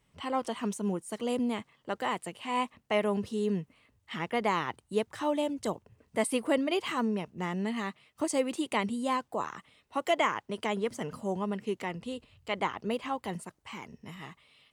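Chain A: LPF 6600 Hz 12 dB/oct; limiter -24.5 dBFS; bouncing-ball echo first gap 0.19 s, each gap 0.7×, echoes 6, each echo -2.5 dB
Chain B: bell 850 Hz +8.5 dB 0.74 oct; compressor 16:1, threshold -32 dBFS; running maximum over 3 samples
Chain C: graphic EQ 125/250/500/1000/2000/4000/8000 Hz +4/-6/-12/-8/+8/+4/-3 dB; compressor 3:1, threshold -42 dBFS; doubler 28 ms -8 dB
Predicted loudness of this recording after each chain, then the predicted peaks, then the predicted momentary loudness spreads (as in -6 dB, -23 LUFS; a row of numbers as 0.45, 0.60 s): -32.5, -38.5, -43.0 LUFS; -17.5, -21.0, -26.0 dBFS; 6, 6, 7 LU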